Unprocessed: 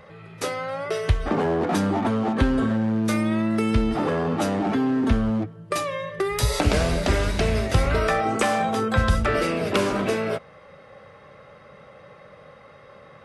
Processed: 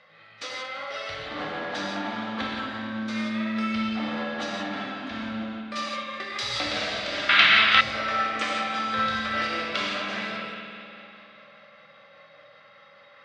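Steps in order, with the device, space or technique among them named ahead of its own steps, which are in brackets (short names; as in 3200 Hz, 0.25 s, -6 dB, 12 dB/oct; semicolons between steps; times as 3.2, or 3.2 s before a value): combo amplifier with spring reverb and tremolo (spring tank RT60 3.1 s, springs 50 ms, chirp 50 ms, DRR 2.5 dB; tremolo 5 Hz, depth 46%; speaker cabinet 93–4300 Hz, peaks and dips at 400 Hz -10 dB, 950 Hz -7 dB, 2600 Hz -3 dB); tilt +4.5 dB/oct; echo with dull and thin repeats by turns 0.114 s, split 960 Hz, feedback 59%, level -11 dB; non-linear reverb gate 0.2 s flat, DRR -2.5 dB; 7.29–7.81 band shelf 1900 Hz +15.5 dB 2.3 oct; gain -7 dB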